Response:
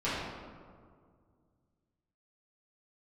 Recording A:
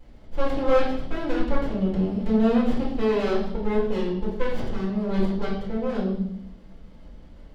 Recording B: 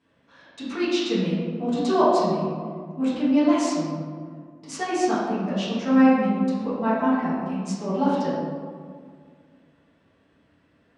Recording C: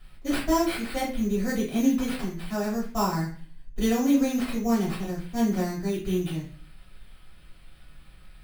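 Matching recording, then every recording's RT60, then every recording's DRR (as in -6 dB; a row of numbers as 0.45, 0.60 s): B; 0.75, 2.0, 0.40 s; -10.5, -13.0, -7.0 dB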